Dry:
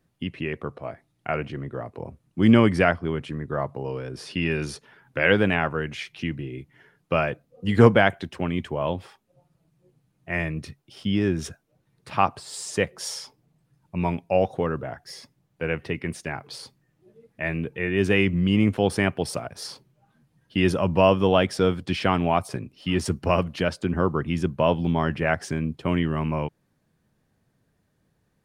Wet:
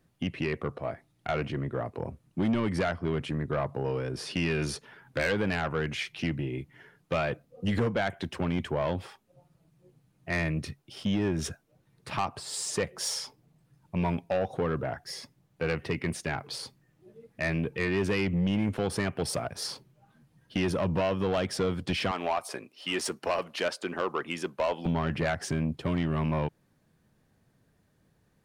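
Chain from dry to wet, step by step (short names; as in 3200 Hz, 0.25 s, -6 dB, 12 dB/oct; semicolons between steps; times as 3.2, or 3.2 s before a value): 22.11–24.86 HPF 480 Hz 12 dB/oct; compressor 4:1, threshold -22 dBFS, peak gain reduction 12 dB; soft clip -22.5 dBFS, distortion -11 dB; gain +1.5 dB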